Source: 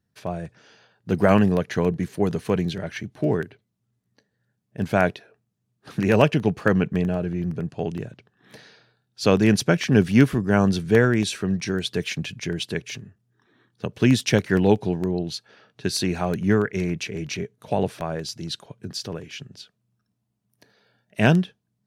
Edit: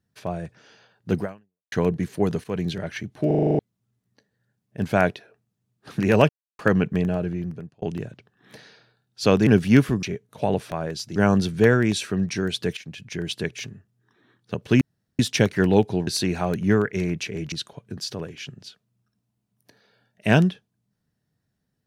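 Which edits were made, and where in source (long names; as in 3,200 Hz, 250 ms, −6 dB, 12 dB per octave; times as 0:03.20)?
0:01.19–0:01.72: fade out exponential
0:02.44–0:02.69: fade in, from −13.5 dB
0:03.27: stutter in place 0.04 s, 8 plays
0:06.29–0:06.59: silence
0:07.27–0:07.82: fade out
0:09.47–0:09.91: remove
0:12.08–0:12.65: fade in, from −16 dB
0:14.12: splice in room tone 0.38 s
0:15.00–0:15.87: remove
0:17.32–0:18.45: move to 0:10.47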